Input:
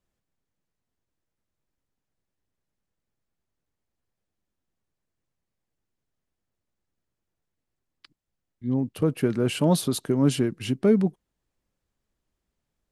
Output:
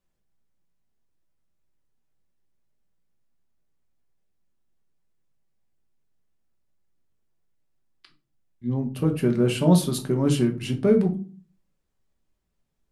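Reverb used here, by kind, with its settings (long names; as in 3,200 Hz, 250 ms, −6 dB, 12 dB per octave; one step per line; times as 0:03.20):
rectangular room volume 210 cubic metres, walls furnished, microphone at 1.1 metres
level −1.5 dB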